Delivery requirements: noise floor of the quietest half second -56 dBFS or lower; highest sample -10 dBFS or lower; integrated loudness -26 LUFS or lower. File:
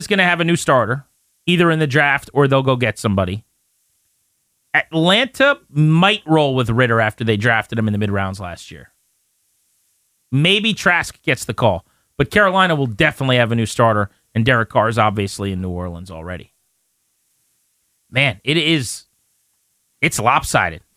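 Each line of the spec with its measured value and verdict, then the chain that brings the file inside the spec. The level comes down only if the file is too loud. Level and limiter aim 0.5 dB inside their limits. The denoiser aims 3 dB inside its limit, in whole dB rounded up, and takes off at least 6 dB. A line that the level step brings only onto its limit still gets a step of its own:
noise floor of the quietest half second -67 dBFS: OK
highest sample -2.0 dBFS: fail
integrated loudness -16.5 LUFS: fail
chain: gain -10 dB

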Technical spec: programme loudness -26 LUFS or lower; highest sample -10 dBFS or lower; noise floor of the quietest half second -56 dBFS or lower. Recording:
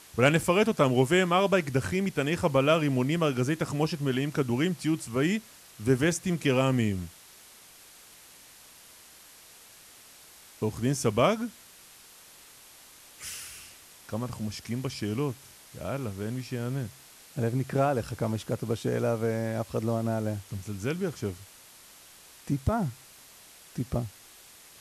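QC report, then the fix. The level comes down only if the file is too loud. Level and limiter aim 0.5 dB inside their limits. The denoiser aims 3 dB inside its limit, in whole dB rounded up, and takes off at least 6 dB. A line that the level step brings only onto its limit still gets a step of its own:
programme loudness -28.5 LUFS: OK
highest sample -7.5 dBFS: fail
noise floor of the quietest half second -53 dBFS: fail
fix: denoiser 6 dB, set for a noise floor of -53 dBFS; limiter -10.5 dBFS

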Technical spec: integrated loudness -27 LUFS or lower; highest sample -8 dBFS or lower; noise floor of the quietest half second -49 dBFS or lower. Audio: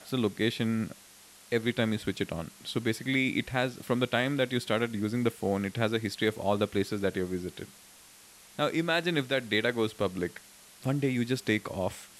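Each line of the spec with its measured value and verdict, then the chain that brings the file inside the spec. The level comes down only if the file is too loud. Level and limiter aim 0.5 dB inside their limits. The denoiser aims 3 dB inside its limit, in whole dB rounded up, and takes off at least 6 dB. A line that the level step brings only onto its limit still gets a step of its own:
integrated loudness -30.0 LUFS: OK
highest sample -12.5 dBFS: OK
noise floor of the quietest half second -54 dBFS: OK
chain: none

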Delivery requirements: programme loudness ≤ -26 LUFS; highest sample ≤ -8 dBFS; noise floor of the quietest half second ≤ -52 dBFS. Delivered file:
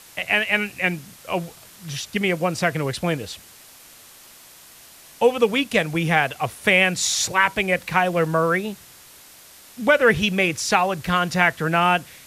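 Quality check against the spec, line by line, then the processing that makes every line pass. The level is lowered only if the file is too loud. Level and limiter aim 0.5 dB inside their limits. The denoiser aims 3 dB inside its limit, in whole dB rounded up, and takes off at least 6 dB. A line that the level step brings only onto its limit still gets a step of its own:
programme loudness -20.5 LUFS: fail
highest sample -4.5 dBFS: fail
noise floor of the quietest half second -47 dBFS: fail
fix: gain -6 dB

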